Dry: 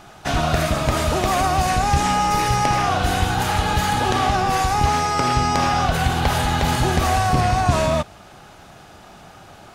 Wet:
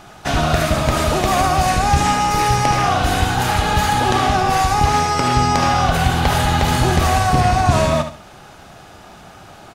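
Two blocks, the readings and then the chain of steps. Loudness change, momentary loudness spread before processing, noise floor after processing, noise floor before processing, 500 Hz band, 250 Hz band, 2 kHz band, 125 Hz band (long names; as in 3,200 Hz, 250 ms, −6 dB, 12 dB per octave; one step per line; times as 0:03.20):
+3.0 dB, 2 LU, −42 dBFS, −44 dBFS, +3.0 dB, +3.0 dB, +3.0 dB, +3.5 dB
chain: repeating echo 72 ms, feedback 26%, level −9.5 dB
level +2.5 dB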